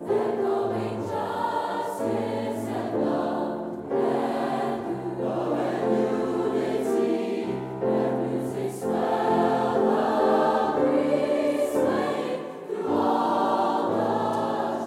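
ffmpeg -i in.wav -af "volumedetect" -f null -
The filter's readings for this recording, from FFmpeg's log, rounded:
mean_volume: -25.0 dB
max_volume: -10.4 dB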